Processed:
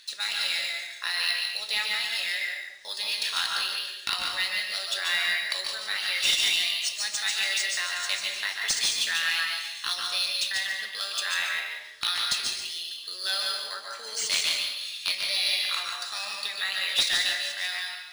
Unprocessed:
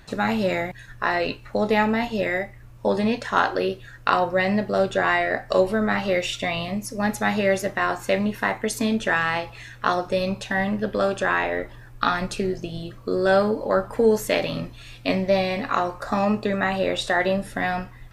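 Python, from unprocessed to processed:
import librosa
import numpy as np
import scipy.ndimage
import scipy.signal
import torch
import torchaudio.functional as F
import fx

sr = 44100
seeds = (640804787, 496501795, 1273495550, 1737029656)

y = fx.ladder_bandpass(x, sr, hz=5000.0, resonance_pct=35)
y = fx.high_shelf(y, sr, hz=5200.0, db=5.5)
y = fx.fold_sine(y, sr, drive_db=10, ceiling_db=-20.5)
y = y + 10.0 ** (-6.0 / 20.0) * np.pad(y, (int(145 * sr / 1000.0), 0))[:len(y)]
y = fx.rev_plate(y, sr, seeds[0], rt60_s=0.71, hf_ratio=0.85, predelay_ms=115, drr_db=2.5)
y = np.interp(np.arange(len(y)), np.arange(len(y))[::3], y[::3])
y = F.gain(torch.from_numpy(y), 4.5).numpy()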